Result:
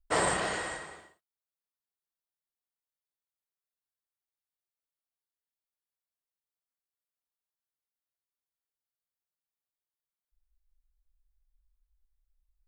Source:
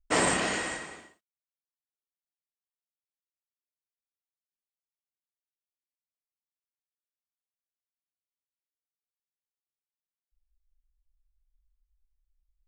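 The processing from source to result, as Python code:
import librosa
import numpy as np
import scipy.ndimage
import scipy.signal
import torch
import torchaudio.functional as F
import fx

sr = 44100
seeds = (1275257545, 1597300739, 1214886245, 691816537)

y = fx.graphic_eq_15(x, sr, hz=(250, 2500, 6300), db=(-12, -7, -8))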